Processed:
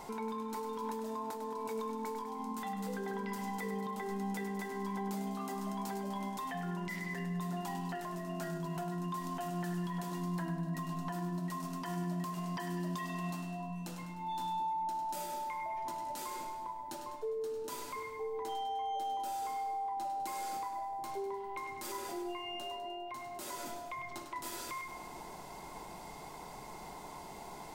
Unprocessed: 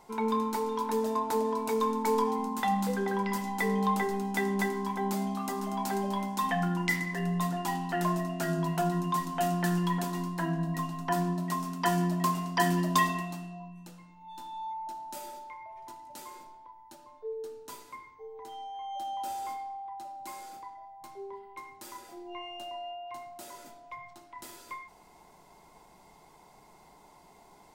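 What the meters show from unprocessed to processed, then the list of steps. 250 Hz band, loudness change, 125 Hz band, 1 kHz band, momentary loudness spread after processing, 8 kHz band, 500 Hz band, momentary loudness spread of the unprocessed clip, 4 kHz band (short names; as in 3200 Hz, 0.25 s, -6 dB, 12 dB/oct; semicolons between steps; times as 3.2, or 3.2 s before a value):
-7.0 dB, -8.5 dB, -7.0 dB, -5.5 dB, 7 LU, -5.5 dB, -7.0 dB, 18 LU, -6.0 dB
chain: compressor 4:1, threshold -46 dBFS, peak gain reduction 20.5 dB; limiter -41 dBFS, peak gain reduction 11 dB; on a send: split-band echo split 550 Hz, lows 0.731 s, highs 0.101 s, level -9 dB; on the sum: gain +9 dB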